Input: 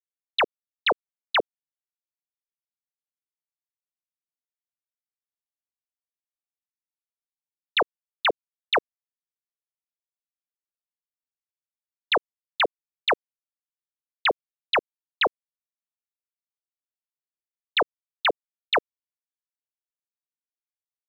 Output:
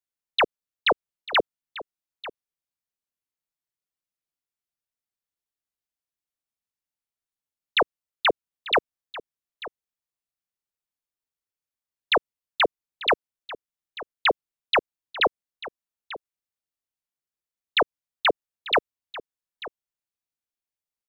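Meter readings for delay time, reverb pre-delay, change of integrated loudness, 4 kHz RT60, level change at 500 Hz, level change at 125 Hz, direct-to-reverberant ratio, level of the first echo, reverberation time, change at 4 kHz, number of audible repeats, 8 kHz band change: 892 ms, no reverb audible, +1.0 dB, no reverb audible, +2.0 dB, +4.5 dB, no reverb audible, −16.5 dB, no reverb audible, +1.0 dB, 1, can't be measured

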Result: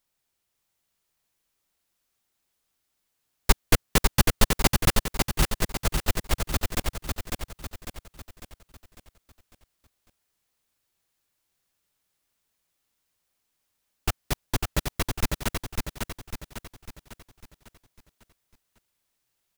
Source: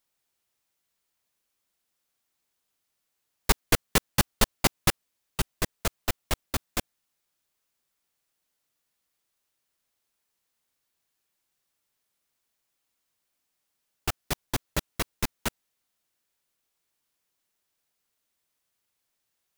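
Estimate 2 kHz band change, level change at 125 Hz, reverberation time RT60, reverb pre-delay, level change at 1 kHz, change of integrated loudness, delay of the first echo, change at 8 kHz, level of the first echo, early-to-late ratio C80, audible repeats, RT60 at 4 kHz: +2.0 dB, +6.0 dB, no reverb audible, no reverb audible, +2.0 dB, +1.5 dB, 550 ms, +2.0 dB, −4.0 dB, no reverb audible, 5, no reverb audible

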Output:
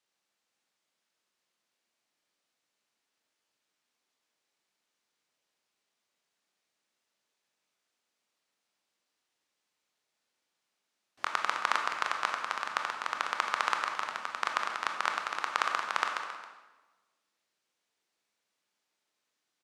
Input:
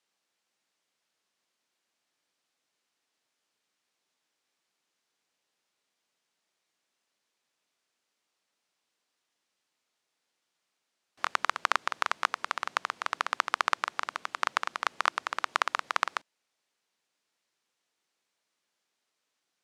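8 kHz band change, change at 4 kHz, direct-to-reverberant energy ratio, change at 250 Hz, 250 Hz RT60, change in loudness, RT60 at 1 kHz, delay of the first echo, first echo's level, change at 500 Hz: −1.5 dB, −1.5 dB, 2.5 dB, −1.0 dB, 1.3 s, −1.0 dB, 1.2 s, 271 ms, −15.0 dB, −1.0 dB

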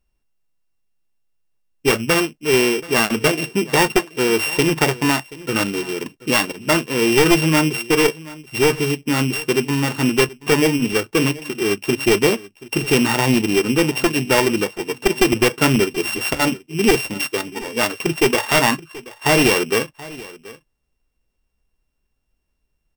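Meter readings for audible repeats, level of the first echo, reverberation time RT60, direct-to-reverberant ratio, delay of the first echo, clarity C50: 1, −19.5 dB, no reverb audible, no reverb audible, 730 ms, no reverb audible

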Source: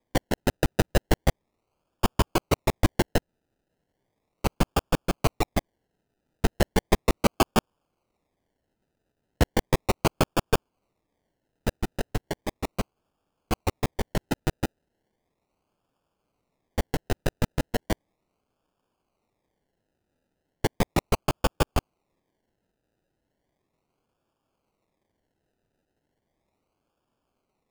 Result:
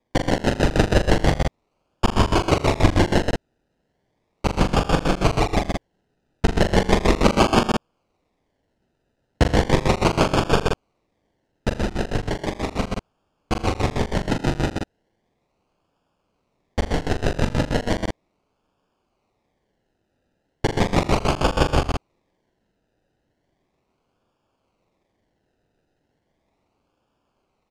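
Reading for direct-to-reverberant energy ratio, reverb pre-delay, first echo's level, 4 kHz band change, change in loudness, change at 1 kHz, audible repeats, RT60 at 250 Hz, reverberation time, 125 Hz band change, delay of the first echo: no reverb audible, no reverb audible, −7.0 dB, +6.5 dB, +6.0 dB, +7.0 dB, 4, no reverb audible, no reverb audible, +6.5 dB, 42 ms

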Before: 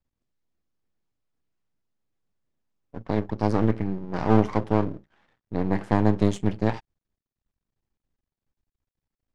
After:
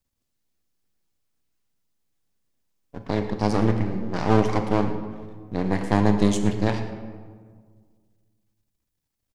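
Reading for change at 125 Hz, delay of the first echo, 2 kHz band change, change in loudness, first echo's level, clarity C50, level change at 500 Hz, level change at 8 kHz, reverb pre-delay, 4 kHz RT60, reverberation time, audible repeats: +1.0 dB, 115 ms, +3.5 dB, +1.0 dB, −16.5 dB, 7.5 dB, +1.5 dB, can't be measured, 31 ms, 0.95 s, 1.7 s, 1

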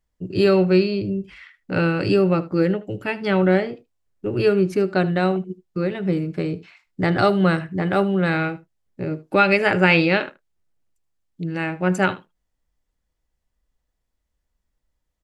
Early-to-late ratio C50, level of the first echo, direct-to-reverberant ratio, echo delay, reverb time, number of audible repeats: no reverb audible, −19.0 dB, no reverb audible, 77 ms, no reverb audible, 1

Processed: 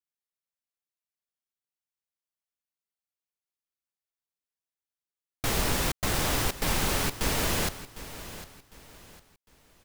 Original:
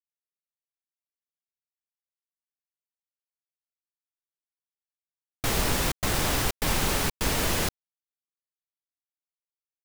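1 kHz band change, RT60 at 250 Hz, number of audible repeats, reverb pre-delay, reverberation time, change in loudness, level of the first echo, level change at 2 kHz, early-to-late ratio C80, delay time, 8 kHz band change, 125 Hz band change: −1.5 dB, no reverb audible, 3, no reverb audible, no reverb audible, −1.5 dB, −14.5 dB, −1.5 dB, no reverb audible, 754 ms, −1.5 dB, −1.5 dB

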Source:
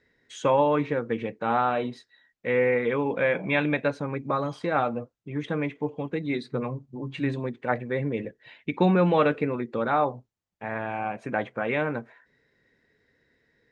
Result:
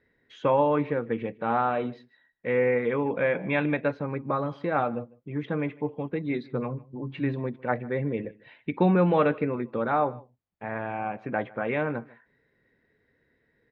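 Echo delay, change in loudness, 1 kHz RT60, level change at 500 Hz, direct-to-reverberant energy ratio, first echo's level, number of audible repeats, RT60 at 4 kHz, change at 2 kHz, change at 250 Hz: 152 ms, −1.0 dB, no reverb audible, −0.5 dB, no reverb audible, −23.0 dB, 1, no reverb audible, −2.5 dB, −0.5 dB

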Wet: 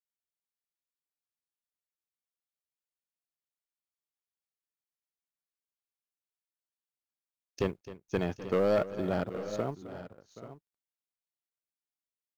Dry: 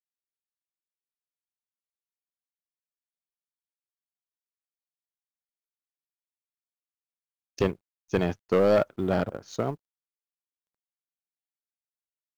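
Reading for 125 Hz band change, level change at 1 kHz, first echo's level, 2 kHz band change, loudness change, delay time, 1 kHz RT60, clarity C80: −5.0 dB, −5.0 dB, −15.5 dB, −5.0 dB, −5.0 dB, 262 ms, no reverb audible, no reverb audible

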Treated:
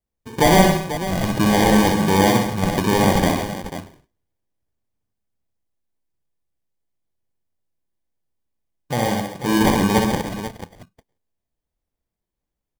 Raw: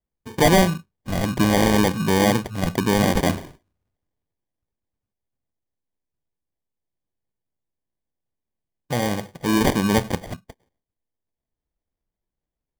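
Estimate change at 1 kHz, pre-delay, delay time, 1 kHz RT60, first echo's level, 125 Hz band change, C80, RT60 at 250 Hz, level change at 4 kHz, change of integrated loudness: +4.5 dB, no reverb audible, 62 ms, no reverb audible, −4.0 dB, +2.0 dB, no reverb audible, no reverb audible, +2.0 dB, +2.5 dB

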